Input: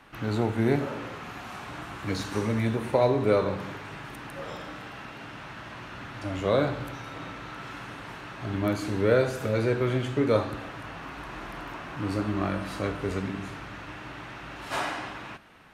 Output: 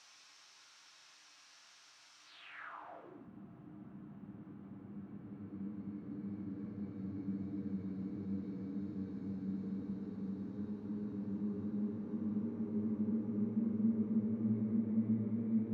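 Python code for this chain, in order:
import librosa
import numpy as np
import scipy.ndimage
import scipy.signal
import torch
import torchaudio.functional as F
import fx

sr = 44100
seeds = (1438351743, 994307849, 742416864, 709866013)

y = fx.paulstretch(x, sr, seeds[0], factor=18.0, window_s=0.5, from_s=1.68)
y = fx.filter_sweep_bandpass(y, sr, from_hz=5500.0, to_hz=210.0, start_s=2.24, end_s=3.29, q=3.7)
y = y * librosa.db_to_amplitude(-2.5)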